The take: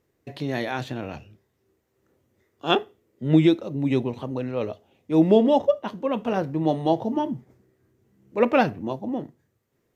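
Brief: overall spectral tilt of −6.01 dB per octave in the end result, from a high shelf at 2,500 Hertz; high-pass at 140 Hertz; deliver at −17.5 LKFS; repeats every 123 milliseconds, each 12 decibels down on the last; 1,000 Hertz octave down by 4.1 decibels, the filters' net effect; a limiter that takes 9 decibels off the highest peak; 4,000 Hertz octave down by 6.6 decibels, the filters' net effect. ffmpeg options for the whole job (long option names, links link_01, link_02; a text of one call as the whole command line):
ffmpeg -i in.wav -af "highpass=140,equalizer=frequency=1000:width_type=o:gain=-5,highshelf=frequency=2500:gain=-5,equalizer=frequency=4000:width_type=o:gain=-4,alimiter=limit=-16.5dB:level=0:latency=1,aecho=1:1:123|246|369:0.251|0.0628|0.0157,volume=11dB" out.wav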